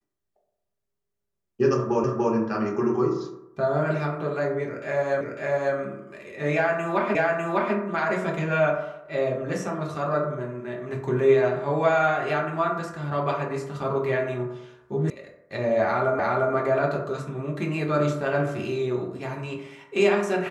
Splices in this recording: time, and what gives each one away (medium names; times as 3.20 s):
2.04 s: repeat of the last 0.29 s
5.21 s: repeat of the last 0.55 s
7.15 s: repeat of the last 0.6 s
15.10 s: sound stops dead
16.19 s: repeat of the last 0.35 s